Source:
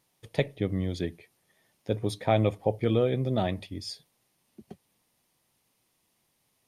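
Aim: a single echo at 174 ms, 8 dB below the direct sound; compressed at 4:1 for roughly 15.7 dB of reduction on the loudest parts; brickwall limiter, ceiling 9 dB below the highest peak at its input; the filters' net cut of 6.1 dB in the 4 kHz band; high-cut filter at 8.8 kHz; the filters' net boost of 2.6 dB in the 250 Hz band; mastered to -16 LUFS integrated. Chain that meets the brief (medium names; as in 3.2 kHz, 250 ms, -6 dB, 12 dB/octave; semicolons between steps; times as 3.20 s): low-pass 8.8 kHz; peaking EQ 250 Hz +3.5 dB; peaking EQ 4 kHz -7.5 dB; compression 4:1, threshold -38 dBFS; peak limiter -30.5 dBFS; delay 174 ms -8 dB; trim +27.5 dB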